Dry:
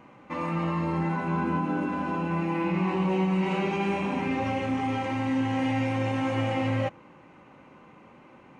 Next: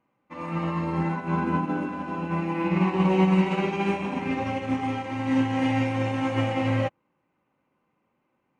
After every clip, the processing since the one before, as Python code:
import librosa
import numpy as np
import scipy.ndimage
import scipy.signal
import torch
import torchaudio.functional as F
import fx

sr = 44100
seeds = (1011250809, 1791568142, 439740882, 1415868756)

y = fx.upward_expand(x, sr, threshold_db=-42.0, expansion=2.5)
y = F.gain(torch.from_numpy(y), 7.0).numpy()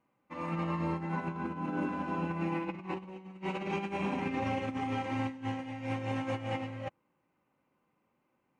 y = fx.over_compress(x, sr, threshold_db=-28.0, ratio=-0.5)
y = F.gain(torch.from_numpy(y), -6.5).numpy()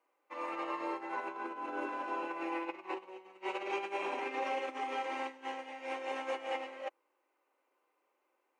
y = scipy.signal.sosfilt(scipy.signal.butter(6, 350.0, 'highpass', fs=sr, output='sos'), x)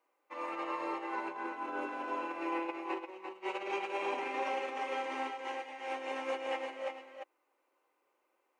y = x + 10.0 ** (-6.0 / 20.0) * np.pad(x, (int(347 * sr / 1000.0), 0))[:len(x)]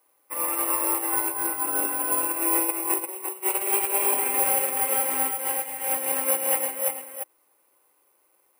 y = (np.kron(x[::4], np.eye(4)[0]) * 4)[:len(x)]
y = F.gain(torch.from_numpy(y), 6.5).numpy()